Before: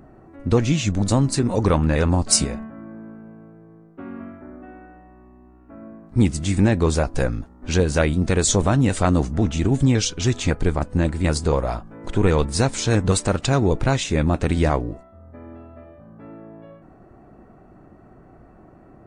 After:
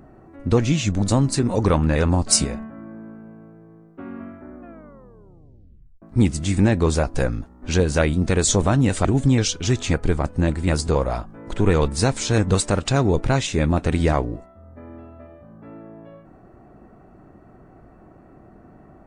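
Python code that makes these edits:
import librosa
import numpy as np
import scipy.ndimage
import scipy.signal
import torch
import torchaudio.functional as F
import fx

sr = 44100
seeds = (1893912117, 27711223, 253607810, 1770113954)

y = fx.edit(x, sr, fx.tape_stop(start_s=4.57, length_s=1.45),
    fx.cut(start_s=9.05, length_s=0.57), tone=tone)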